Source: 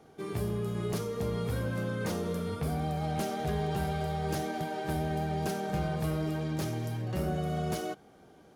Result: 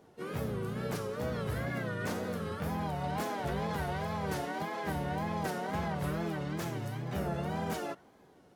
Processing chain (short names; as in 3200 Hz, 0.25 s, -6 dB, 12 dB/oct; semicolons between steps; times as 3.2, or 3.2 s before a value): dynamic EQ 1400 Hz, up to +6 dB, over -51 dBFS, Q 0.92; wow and flutter 140 cents; harmoniser +4 st -4 dB; gain -5 dB